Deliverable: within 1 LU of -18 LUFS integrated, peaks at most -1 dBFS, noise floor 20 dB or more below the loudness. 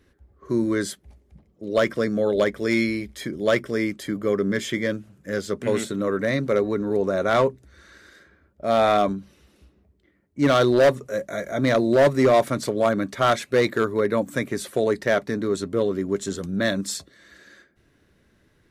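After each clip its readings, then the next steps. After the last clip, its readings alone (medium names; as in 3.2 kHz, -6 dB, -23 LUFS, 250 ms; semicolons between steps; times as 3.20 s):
clipped samples 0.9%; clipping level -12.0 dBFS; loudness -23.0 LUFS; peak level -12.0 dBFS; loudness target -18.0 LUFS
-> clip repair -12 dBFS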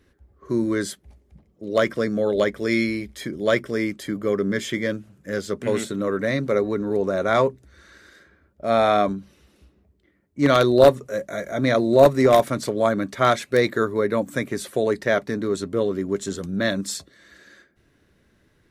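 clipped samples 0.0%; loudness -22.0 LUFS; peak level -3.0 dBFS; loudness target -18.0 LUFS
-> trim +4 dB; peak limiter -1 dBFS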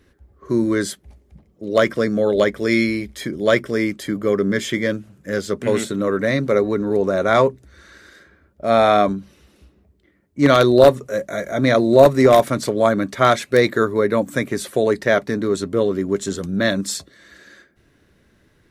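loudness -18.5 LUFS; peak level -1.0 dBFS; noise floor -59 dBFS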